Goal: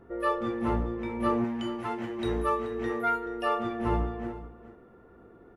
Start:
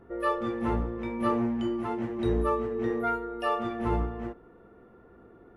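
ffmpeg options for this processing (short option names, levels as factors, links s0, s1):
-filter_complex "[0:a]asettb=1/sr,asplit=3[s0][s1][s2];[s0]atrim=end=1.444[s3];[s1]atrim=start=1.44:end=3.26,asetpts=PTS-STARTPTS,afade=t=in:d=0.004:c=qsin,afade=t=out:st=1.816:d=0.004:c=qsin,tiltshelf=f=770:g=-5[s4];[s2]atrim=start=3.256[s5];[s3][s4]acrossfade=d=0.004:c1=hsin:c2=qsin[s6];[s6][s5]acrossfade=d=0.004:c1=qsin:c2=hsin,aecho=1:1:430:0.178"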